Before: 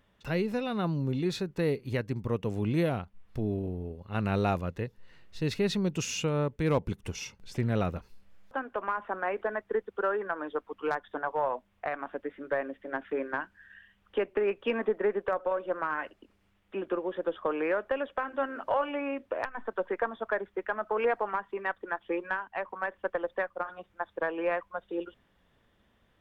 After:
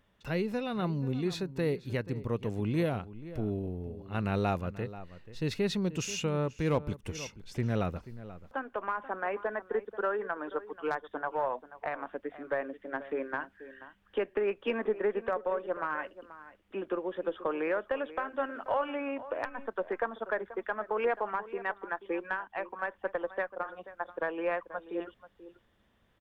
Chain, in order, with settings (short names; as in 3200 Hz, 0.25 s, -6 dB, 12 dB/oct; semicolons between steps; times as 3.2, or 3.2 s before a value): outdoor echo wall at 83 m, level -15 dB; gain -2 dB